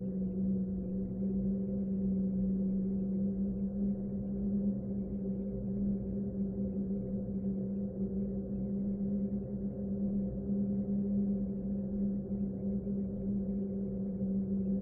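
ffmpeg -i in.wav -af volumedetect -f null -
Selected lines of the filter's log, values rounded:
mean_volume: -34.3 dB
max_volume: -24.1 dB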